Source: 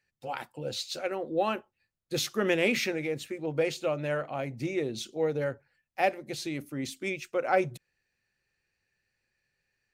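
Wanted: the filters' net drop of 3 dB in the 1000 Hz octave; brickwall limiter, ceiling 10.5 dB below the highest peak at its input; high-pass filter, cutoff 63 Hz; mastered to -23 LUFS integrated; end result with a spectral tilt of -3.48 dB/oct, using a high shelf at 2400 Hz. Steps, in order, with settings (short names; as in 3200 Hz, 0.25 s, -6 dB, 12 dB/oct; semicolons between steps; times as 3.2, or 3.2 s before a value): HPF 63 Hz; bell 1000 Hz -6 dB; high shelf 2400 Hz +7.5 dB; gain +9.5 dB; limiter -11 dBFS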